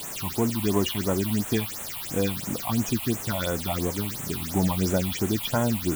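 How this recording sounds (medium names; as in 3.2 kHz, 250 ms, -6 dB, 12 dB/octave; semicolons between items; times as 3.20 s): a quantiser's noise floor 6-bit, dither triangular; phasing stages 6, 2.9 Hz, lowest notch 400–4700 Hz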